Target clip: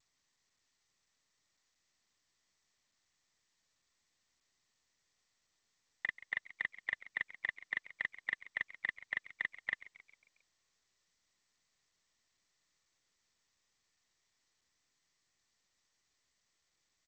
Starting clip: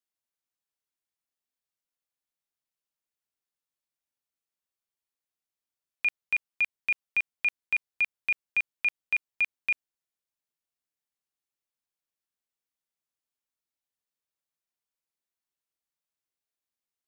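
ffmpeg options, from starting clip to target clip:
-filter_complex "[0:a]asuperpass=centerf=1900:order=12:qfactor=6.2,asplit=6[a][b][c][d][e][f];[b]adelay=135,afreqshift=83,volume=-17dB[g];[c]adelay=270,afreqshift=166,volume=-22.5dB[h];[d]adelay=405,afreqshift=249,volume=-28dB[i];[e]adelay=540,afreqshift=332,volume=-33.5dB[j];[f]adelay=675,afreqshift=415,volume=-39.1dB[k];[a][g][h][i][j][k]amix=inputs=6:normalize=0,aresample=8000,acrusher=bits=2:mode=log:mix=0:aa=0.000001,aresample=44100,volume=15dB" -ar 16000 -c:a g722

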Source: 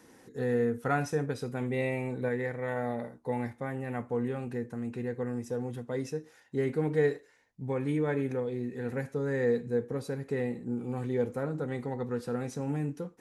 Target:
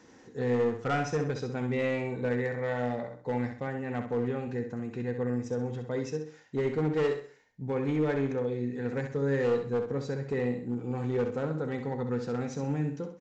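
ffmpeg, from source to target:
-af "aresample=16000,asoftclip=type=hard:threshold=-24.5dB,aresample=44100,aecho=1:1:65|130|195|260:0.422|0.143|0.0487|0.0166,volume=1dB"

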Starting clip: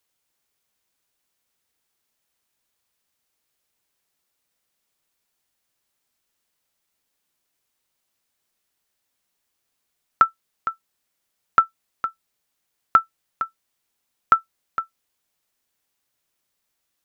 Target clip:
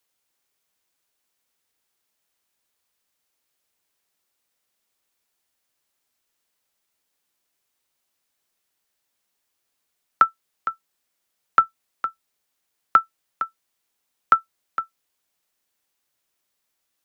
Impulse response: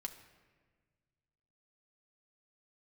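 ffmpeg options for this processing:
-filter_complex "[0:a]acrossover=split=240|640|1400[a][b][c][d];[a]flanger=delay=9:depth=8.7:regen=-37:speed=0.22:shape=triangular[e];[e][b][c][d]amix=inputs=4:normalize=0"

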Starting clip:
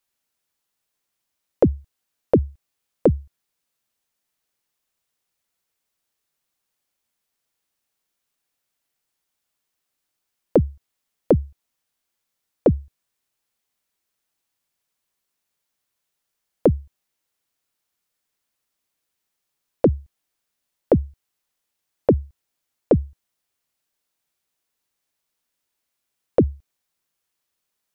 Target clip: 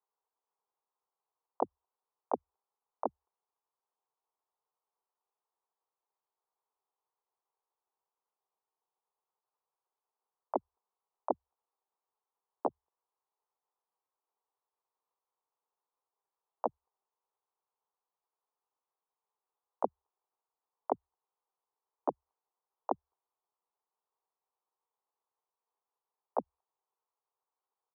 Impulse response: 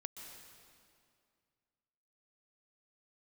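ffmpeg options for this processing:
-filter_complex "[0:a]asuperpass=centerf=890:order=4:qfactor=2.9,asplit=4[a][b][c][d];[b]asetrate=22050,aresample=44100,atempo=2,volume=-7dB[e];[c]asetrate=35002,aresample=44100,atempo=1.25992,volume=-11dB[f];[d]asetrate=52444,aresample=44100,atempo=0.840896,volume=-5dB[g];[a][e][f][g]amix=inputs=4:normalize=0,volume=1dB"

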